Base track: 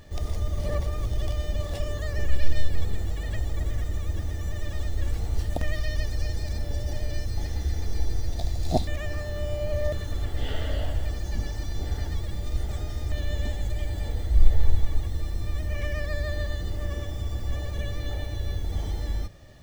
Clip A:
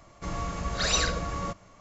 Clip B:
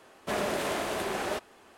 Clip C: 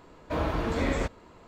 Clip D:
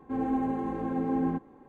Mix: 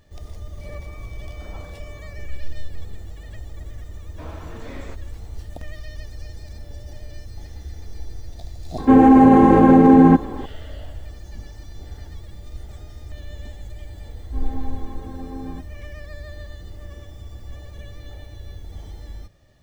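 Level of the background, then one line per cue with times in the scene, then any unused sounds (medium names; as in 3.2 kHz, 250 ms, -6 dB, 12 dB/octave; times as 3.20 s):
base track -7.5 dB
0.61 s: add A -14.5 dB + class-D stage that switches slowly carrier 2.3 kHz
3.88 s: add C -10 dB
8.78 s: add D -2 dB + loudness maximiser +24 dB
14.23 s: add D -6.5 dB
not used: B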